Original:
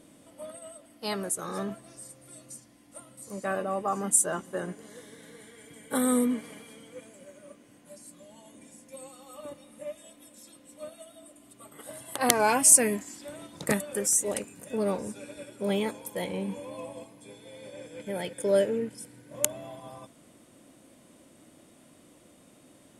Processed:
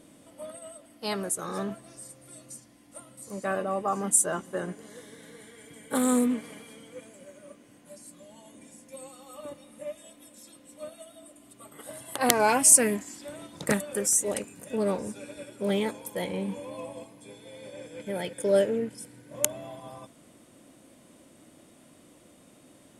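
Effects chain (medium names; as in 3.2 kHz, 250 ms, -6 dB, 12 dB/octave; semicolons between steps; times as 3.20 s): loudspeaker Doppler distortion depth 0.13 ms; trim +1 dB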